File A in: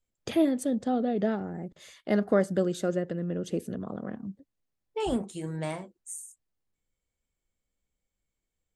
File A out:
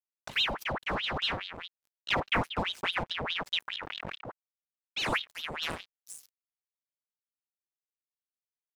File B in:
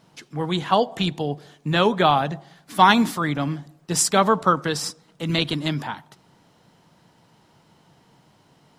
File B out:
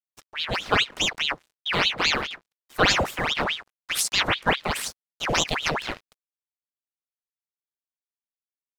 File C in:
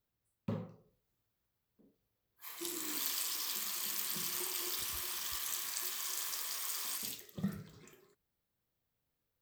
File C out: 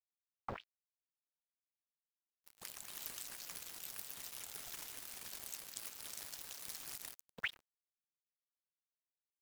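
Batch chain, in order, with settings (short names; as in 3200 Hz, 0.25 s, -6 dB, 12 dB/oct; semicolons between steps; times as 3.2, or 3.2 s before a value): crossover distortion -40.5 dBFS; vocal rider within 3 dB 0.5 s; ring modulator with a swept carrier 1900 Hz, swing 85%, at 4.8 Hz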